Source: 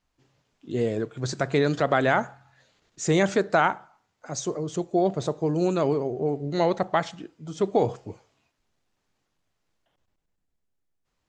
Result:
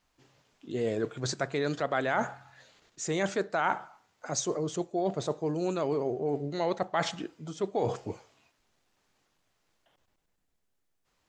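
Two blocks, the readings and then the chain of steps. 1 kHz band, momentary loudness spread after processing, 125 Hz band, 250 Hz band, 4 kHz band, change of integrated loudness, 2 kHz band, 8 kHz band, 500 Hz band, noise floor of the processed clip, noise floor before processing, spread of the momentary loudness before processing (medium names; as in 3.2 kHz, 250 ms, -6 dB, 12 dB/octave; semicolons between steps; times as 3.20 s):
-5.5 dB, 9 LU, -7.5 dB, -7.0 dB, -2.5 dB, -6.5 dB, -5.5 dB, -0.5 dB, -6.0 dB, -76 dBFS, -77 dBFS, 13 LU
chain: reverse; compression 5:1, threshold -30 dBFS, peak gain reduction 13.5 dB; reverse; bass shelf 260 Hz -6.5 dB; trim +5 dB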